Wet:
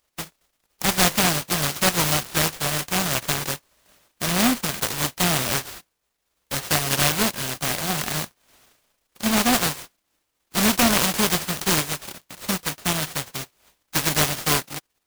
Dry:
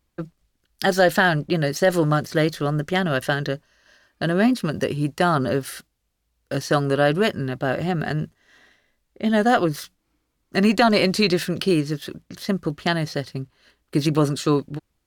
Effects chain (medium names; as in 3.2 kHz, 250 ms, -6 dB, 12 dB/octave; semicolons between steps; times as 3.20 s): formants flattened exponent 0.1; delay time shaken by noise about 1.4 kHz, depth 0.097 ms; trim -1 dB